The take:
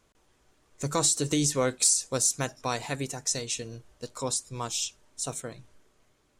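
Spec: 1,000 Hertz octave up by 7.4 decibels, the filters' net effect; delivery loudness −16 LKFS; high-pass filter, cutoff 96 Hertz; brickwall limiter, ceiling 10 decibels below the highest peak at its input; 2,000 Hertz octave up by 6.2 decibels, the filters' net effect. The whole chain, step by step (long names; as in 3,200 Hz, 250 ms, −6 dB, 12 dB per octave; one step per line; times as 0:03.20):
high-pass filter 96 Hz
parametric band 1,000 Hz +7.5 dB
parametric band 2,000 Hz +5.5 dB
level +14.5 dB
brickwall limiter −3.5 dBFS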